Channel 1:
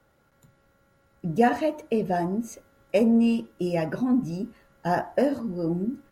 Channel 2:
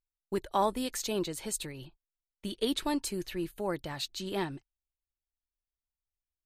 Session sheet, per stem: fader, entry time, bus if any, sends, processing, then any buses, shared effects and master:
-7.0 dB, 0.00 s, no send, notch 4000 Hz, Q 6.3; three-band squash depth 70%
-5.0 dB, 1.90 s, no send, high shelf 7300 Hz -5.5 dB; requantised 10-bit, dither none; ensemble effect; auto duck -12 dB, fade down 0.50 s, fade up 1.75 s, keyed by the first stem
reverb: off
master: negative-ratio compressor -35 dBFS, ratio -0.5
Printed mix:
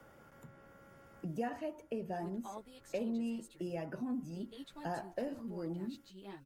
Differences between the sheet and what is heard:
stem 1 -7.0 dB -> -15.0 dB; master: missing negative-ratio compressor -35 dBFS, ratio -0.5

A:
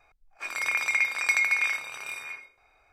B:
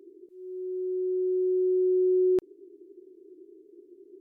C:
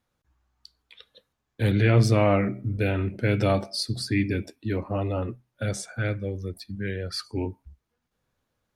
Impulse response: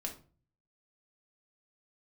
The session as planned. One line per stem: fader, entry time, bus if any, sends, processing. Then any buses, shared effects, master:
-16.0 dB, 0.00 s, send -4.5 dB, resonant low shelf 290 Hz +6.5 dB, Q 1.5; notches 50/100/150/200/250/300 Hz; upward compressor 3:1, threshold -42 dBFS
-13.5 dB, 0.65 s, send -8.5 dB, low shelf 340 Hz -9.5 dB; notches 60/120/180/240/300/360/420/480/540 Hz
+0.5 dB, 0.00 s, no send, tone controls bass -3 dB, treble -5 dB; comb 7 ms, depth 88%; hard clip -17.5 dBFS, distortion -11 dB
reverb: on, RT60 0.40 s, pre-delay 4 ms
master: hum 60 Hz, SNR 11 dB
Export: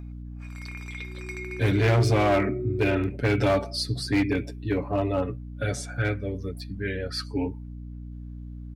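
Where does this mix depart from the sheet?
stem A: send off; stem B -13.5 dB -> -7.0 dB

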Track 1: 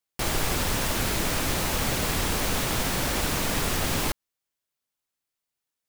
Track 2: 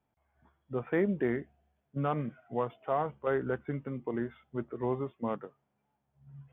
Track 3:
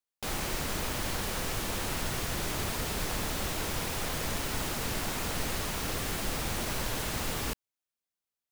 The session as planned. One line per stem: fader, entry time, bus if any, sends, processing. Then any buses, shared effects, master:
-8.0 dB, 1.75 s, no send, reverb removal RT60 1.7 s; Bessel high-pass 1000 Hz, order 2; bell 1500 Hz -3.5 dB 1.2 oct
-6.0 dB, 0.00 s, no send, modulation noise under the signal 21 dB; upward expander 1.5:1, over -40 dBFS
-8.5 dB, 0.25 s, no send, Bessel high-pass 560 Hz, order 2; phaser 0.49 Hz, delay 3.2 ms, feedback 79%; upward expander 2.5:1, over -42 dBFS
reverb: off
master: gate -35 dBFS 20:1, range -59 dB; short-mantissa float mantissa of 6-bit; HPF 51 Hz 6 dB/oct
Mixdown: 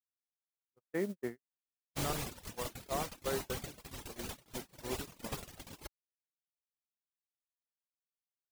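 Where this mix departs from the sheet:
stem 1: missing Bessel high-pass 1000 Hz, order 2; stem 3: muted

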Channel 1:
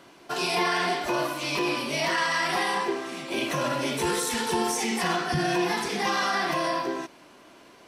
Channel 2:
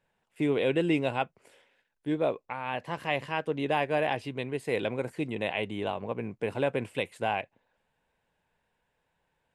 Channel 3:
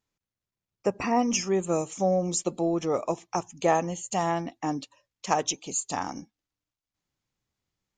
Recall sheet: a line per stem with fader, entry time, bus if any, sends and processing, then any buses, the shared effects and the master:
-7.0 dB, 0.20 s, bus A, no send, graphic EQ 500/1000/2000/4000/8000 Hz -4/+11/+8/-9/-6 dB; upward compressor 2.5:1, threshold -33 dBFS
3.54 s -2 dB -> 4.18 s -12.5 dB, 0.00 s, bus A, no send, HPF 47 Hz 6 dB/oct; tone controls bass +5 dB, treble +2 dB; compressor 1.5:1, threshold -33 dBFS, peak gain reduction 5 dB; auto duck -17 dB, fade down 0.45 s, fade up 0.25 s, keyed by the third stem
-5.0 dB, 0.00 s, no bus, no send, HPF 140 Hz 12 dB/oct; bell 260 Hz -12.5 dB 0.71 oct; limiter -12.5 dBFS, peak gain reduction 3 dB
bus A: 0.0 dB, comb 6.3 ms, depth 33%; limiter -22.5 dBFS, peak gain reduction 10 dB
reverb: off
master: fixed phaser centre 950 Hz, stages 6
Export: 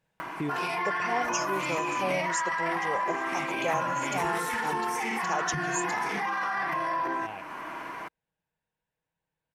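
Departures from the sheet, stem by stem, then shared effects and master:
stem 1 -7.0 dB -> +2.5 dB; stem 2: missing compressor 1.5:1, threshold -33 dBFS, peak gain reduction 5 dB; master: missing fixed phaser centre 950 Hz, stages 6

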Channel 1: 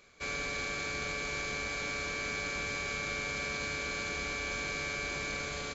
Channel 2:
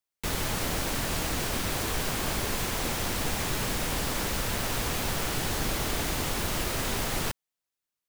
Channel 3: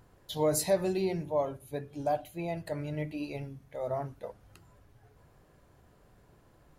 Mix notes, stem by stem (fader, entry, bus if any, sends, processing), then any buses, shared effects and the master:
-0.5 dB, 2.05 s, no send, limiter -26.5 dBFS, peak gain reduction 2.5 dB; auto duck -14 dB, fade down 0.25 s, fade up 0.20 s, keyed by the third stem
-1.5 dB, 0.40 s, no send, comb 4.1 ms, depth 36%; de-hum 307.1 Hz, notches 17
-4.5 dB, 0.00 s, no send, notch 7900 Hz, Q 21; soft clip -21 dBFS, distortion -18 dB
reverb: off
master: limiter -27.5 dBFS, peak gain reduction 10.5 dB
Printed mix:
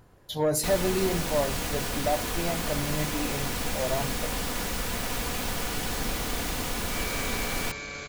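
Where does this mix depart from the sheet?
stem 1: entry 2.05 s -> 2.55 s; stem 3 -4.5 dB -> +4.0 dB; master: missing limiter -27.5 dBFS, peak gain reduction 10.5 dB

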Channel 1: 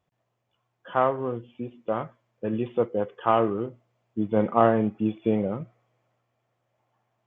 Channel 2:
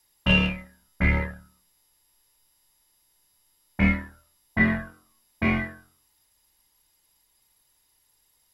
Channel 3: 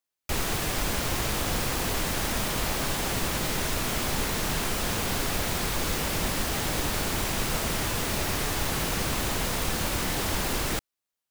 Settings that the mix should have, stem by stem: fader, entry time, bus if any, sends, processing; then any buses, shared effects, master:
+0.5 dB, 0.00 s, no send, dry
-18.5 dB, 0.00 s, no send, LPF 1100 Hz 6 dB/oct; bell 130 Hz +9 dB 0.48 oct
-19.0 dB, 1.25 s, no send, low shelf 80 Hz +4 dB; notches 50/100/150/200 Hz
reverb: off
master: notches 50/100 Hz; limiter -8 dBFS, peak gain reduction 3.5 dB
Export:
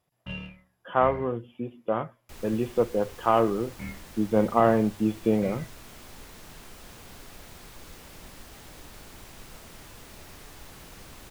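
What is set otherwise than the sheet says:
stem 2: missing LPF 1100 Hz 6 dB/oct; stem 3: entry 1.25 s -> 2.00 s

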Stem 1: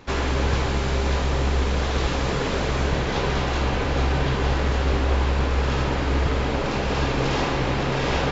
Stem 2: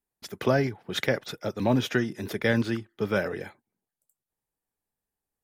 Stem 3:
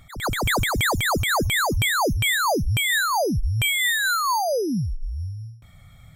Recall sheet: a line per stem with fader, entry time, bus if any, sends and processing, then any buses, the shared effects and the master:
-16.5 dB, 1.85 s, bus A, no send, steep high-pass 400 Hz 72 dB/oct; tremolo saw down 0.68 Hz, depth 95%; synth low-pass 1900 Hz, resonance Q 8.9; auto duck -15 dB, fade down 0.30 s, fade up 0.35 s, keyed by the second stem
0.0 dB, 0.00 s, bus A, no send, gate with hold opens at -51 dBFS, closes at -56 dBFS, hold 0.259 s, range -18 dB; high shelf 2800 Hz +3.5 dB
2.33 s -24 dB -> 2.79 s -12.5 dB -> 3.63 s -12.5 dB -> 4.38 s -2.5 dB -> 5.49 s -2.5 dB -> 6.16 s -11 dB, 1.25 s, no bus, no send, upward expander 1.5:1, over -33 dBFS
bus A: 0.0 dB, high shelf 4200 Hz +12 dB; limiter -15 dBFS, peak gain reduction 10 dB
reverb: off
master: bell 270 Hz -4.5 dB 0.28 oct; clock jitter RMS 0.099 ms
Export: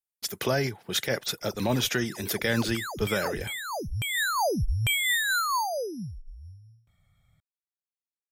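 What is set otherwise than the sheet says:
stem 1: muted; master: missing clock jitter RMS 0.099 ms

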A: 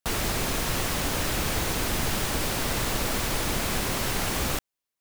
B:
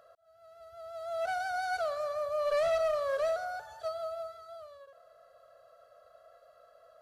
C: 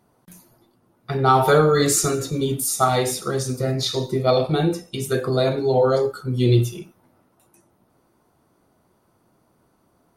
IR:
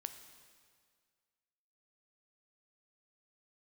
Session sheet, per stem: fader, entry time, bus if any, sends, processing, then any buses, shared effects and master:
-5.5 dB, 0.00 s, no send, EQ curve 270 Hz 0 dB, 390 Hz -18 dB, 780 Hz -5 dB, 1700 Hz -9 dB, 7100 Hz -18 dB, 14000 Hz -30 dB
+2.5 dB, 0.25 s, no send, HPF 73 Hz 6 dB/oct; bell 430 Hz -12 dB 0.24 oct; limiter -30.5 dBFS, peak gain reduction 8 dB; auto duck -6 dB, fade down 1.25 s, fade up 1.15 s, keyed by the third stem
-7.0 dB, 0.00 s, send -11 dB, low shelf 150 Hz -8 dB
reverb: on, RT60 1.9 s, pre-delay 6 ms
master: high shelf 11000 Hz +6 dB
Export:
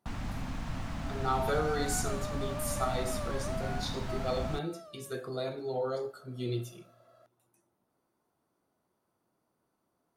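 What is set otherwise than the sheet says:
stem C -7.0 dB -> -16.0 dB; master: missing high shelf 11000 Hz +6 dB

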